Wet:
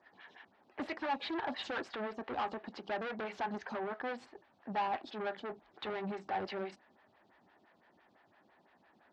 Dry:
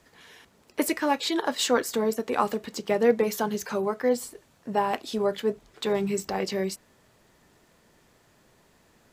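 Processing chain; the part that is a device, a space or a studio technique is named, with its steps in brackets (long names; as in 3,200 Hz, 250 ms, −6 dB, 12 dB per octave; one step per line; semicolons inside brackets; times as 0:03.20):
vibe pedal into a guitar amplifier (phaser with staggered stages 5.9 Hz; tube saturation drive 32 dB, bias 0.45; loudspeaker in its box 100–4,100 Hz, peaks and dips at 140 Hz −9 dB, 460 Hz −8 dB, 790 Hz +6 dB, 1,700 Hz +5 dB)
level −1.5 dB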